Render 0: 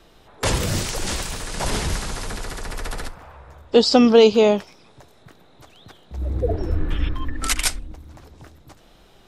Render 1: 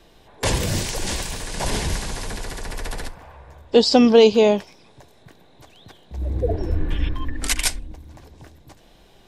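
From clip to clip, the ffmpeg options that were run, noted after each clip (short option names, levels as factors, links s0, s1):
-af "bandreject=f=1300:w=5.6"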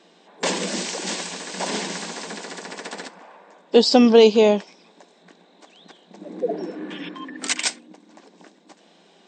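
-af "afftfilt=real='re*between(b*sr/4096,170,8600)':imag='im*between(b*sr/4096,170,8600)':win_size=4096:overlap=0.75"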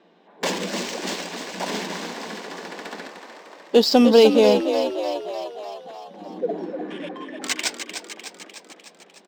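-filter_complex "[0:a]adynamicsmooth=sensitivity=5:basefreq=2700,asplit=9[s0][s1][s2][s3][s4][s5][s6][s7][s8];[s1]adelay=301,afreqshift=46,volume=0.398[s9];[s2]adelay=602,afreqshift=92,volume=0.243[s10];[s3]adelay=903,afreqshift=138,volume=0.148[s11];[s4]adelay=1204,afreqshift=184,volume=0.0902[s12];[s5]adelay=1505,afreqshift=230,volume=0.055[s13];[s6]adelay=1806,afreqshift=276,volume=0.0335[s14];[s7]adelay=2107,afreqshift=322,volume=0.0204[s15];[s8]adelay=2408,afreqshift=368,volume=0.0124[s16];[s0][s9][s10][s11][s12][s13][s14][s15][s16]amix=inputs=9:normalize=0,volume=0.891"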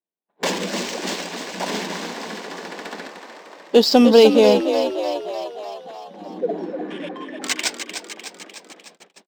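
-af "agate=range=0.00631:threshold=0.00398:ratio=16:detection=peak,volume=1.26"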